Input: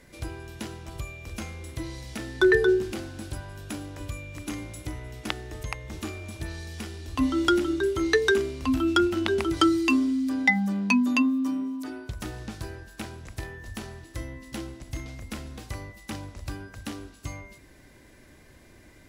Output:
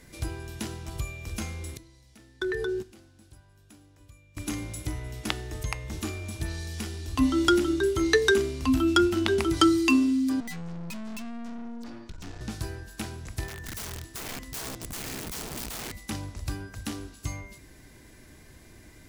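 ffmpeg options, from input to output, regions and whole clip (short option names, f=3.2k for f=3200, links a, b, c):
-filter_complex "[0:a]asettb=1/sr,asplit=3[a][b][c];[a]atrim=end=1.774[d];[b]atrim=start=1.77:end=4.37,asetpts=PTS-STARTPTS,afade=t=in:d=0.004:c=qsin,afade=t=out:st=2.596:d=0.004:c=qsin,agate=range=-20dB:threshold=-27dB:ratio=16:release=100:detection=peak,acompressor=threshold=-28dB:ratio=5:attack=3.2:release=140:knee=1:detection=peak[e];[c]atrim=start=4.366[f];[d][e]acrossfade=d=0.004:c1=hsin:c2=qsin[g];[g][f]acrossfade=d=0.004:c1=qsin:c2=hsin,asettb=1/sr,asplit=3[h][i][j];[h]atrim=end=10.404[k];[i]atrim=start=10.4:end=12.41,asetpts=PTS-STARTPTS,afade=t=in:d=0.004:c=qsin,afade=t=out:st=2.006:d=0.004:c=qsin,lowpass=f=6.9k:w=0.5412,lowpass=f=6.9k:w=1.3066,afreqshift=-29,aeval=exprs='(tanh(89.1*val(0)+0.8)-tanh(0.8))/89.1':c=same[l];[j]atrim=start=12.406[m];[k][l]acrossfade=d=0.004:c1=hsin:c2=qsin[n];[n][m]acrossfade=d=0.004:c1=qsin:c2=hsin,asettb=1/sr,asplit=3[o][p][q];[o]atrim=end=13.484[r];[p]atrim=start=13.48:end=15.97,asetpts=PTS-STARTPTS,afade=t=in:d=0.004:c=qsin,afade=t=out:st=2.486:d=0.004:c=qsin,highpass=f=41:w=0.5412,highpass=f=41:w=1.3066,asubboost=boost=4.5:cutoff=160,aeval=exprs='(mod(50.1*val(0)+1,2)-1)/50.1':c=same[s];[q]atrim=start=15.966[t];[r][s]acrossfade=d=0.004:c1=hsin:c2=qsin[u];[u][t]acrossfade=d=0.004:c1=qsin:c2=hsin,bass=f=250:g=3,treble=f=4k:g=5,bandreject=f=560:w=12,bandreject=f=243.6:t=h:w=4,bandreject=f=487.2:t=h:w=4,bandreject=f=730.8:t=h:w=4,bandreject=f=974.4:t=h:w=4,bandreject=f=1.218k:t=h:w=4,bandreject=f=1.4616k:t=h:w=4,bandreject=f=1.7052k:t=h:w=4,bandreject=f=1.9488k:t=h:w=4,bandreject=f=2.1924k:t=h:w=4,bandreject=f=2.436k:t=h:w=4,bandreject=f=2.6796k:t=h:w=4,bandreject=f=2.9232k:t=h:w=4,bandreject=f=3.1668k:t=h:w=4,bandreject=f=3.4104k:t=h:w=4,bandreject=f=3.654k:t=h:w=4,bandreject=f=3.8976k:t=h:w=4,bandreject=f=4.1412k:t=h:w=4,bandreject=f=4.3848k:t=h:w=4,bandreject=f=4.6284k:t=h:w=4,bandreject=f=4.872k:t=h:w=4,bandreject=f=5.1156k:t=h:w=4,bandreject=f=5.3592k:t=h:w=4,bandreject=f=5.6028k:t=h:w=4,bandreject=f=5.8464k:t=h:w=4,bandreject=f=6.09k:t=h:w=4,bandreject=f=6.3336k:t=h:w=4,bandreject=f=6.5772k:t=h:w=4,bandreject=f=6.8208k:t=h:w=4,bandreject=f=7.0644k:t=h:w=4,bandreject=f=7.308k:t=h:w=4,bandreject=f=7.5516k:t=h:w=4,bandreject=f=7.7952k:t=h:w=4,bandreject=f=8.0388k:t=h:w=4,bandreject=f=8.2824k:t=h:w=4,bandreject=f=8.526k:t=h:w=4,bandreject=f=8.7696k:t=h:w=4,bandreject=f=9.0132k:t=h:w=4"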